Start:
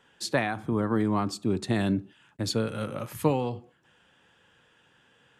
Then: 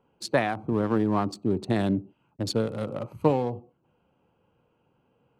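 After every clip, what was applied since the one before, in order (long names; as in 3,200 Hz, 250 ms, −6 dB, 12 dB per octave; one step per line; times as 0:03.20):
adaptive Wiener filter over 25 samples
dynamic equaliser 640 Hz, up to +4 dB, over −41 dBFS, Q 0.72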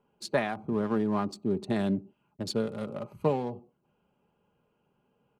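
comb filter 4.9 ms, depth 42%
level −4.5 dB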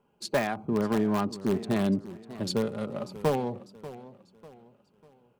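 in parallel at −10.5 dB: wrap-around overflow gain 20 dB
on the sum: feedback echo with a swinging delay time 594 ms, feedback 38%, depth 131 cents, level −16 dB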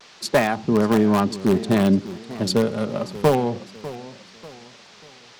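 noise in a band 360–5,500 Hz −57 dBFS
pitch vibrato 0.5 Hz 27 cents
level +8.5 dB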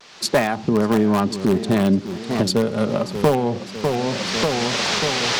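camcorder AGC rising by 28 dB per second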